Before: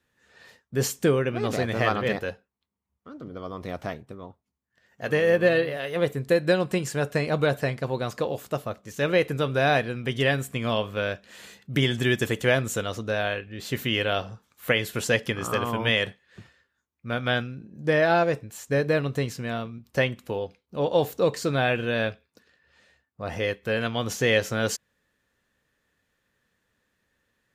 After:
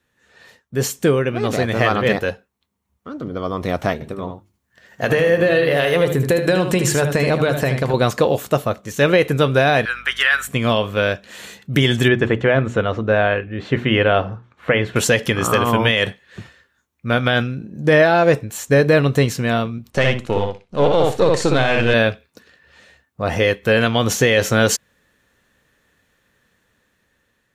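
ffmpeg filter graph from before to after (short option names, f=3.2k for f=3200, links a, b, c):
-filter_complex "[0:a]asettb=1/sr,asplit=3[a][b][c];[a]atrim=end=3.934[d];[b]atrim=start=3.93:end=7.94,asetpts=PTS-STARTPTS,afade=t=in:d=0.004:c=qsin,afade=t=out:st=4.006:d=0.004:c=qsin,bandreject=f=50:t=h:w=6,bandreject=f=100:t=h:w=6,bandreject=f=150:t=h:w=6,bandreject=f=200:t=h:w=6,bandreject=f=250:t=h:w=6,bandreject=f=300:t=h:w=6,bandreject=f=350:t=h:w=6,acompressor=threshold=-28dB:ratio=6:attack=3.2:release=140:knee=1:detection=peak,aecho=1:1:77:0.398,atrim=end_sample=176841[e];[c]atrim=start=7.936[f];[d][e]acrossfade=d=0.004:c1=hsin:c2=qsin[g];[g][f]acrossfade=d=0.004:c1=qsin:c2=hsin,asettb=1/sr,asplit=3[h][i][j];[h]atrim=end=9.854[k];[i]atrim=start=9.85:end=10.48,asetpts=PTS-STARTPTS,afade=t=in:d=0.004:c=qsin,afade=t=out:st=0.626:d=0.004:c=qsin,highpass=f=1.4k:t=q:w=3.6,aeval=exprs='val(0)+0.00178*(sin(2*PI*50*n/s)+sin(2*PI*2*50*n/s)/2+sin(2*PI*3*50*n/s)/3+sin(2*PI*4*50*n/s)/4+sin(2*PI*5*50*n/s)/5)':c=same[l];[j]atrim=start=10.476[m];[k][l]acrossfade=d=0.004:c1=hsin:c2=qsin[n];[n][m]acrossfade=d=0.004:c1=qsin:c2=hsin,asettb=1/sr,asplit=3[o][p][q];[o]atrim=end=12.084[r];[p]atrim=start=12.08:end=14.96,asetpts=PTS-STARTPTS,afade=t=in:d=0.004:c=qsin,afade=t=out:st=2.876:d=0.004:c=qsin,lowpass=2k,bandreject=f=60:t=h:w=6,bandreject=f=120:t=h:w=6,bandreject=f=180:t=h:w=6,bandreject=f=240:t=h:w=6,bandreject=f=300:t=h:w=6,bandreject=f=360:t=h:w=6[s];[q]atrim=start=14.956[t];[r][s]acrossfade=d=0.004:c1=hsin:c2=qsin[u];[u][t]acrossfade=d=0.004:c1=qsin:c2=hsin,asettb=1/sr,asplit=3[v][w][x];[v]atrim=end=19.904[y];[w]atrim=start=19.9:end=21.94,asetpts=PTS-STARTPTS,afade=t=in:d=0.004:c=qsin,afade=t=out:st=2.036:d=0.004:c=qsin,aeval=exprs='if(lt(val(0),0),0.447*val(0),val(0))':c=same,lowpass=f=10k:w=0.5412,lowpass=f=10k:w=1.3066,asplit=2[z][aa];[aa]adelay=61,lowpass=f=4.3k:p=1,volume=-3.5dB,asplit=2[ab][ac];[ac]adelay=61,lowpass=f=4.3k:p=1,volume=0.18,asplit=2[ad][ae];[ae]adelay=61,lowpass=f=4.3k:p=1,volume=0.18[af];[z][ab][ad][af]amix=inputs=4:normalize=0,atrim=end_sample=89964[ag];[x]atrim=start=21.936[ah];[y][ag]acrossfade=d=0.004:c1=hsin:c2=qsin[ai];[ai][ah]acrossfade=d=0.004:c1=qsin:c2=hsin,bandreject=f=4.9k:w=18,dynaudnorm=f=830:g=5:m=11.5dB,alimiter=level_in=8dB:limit=-1dB:release=50:level=0:latency=1,volume=-3.5dB"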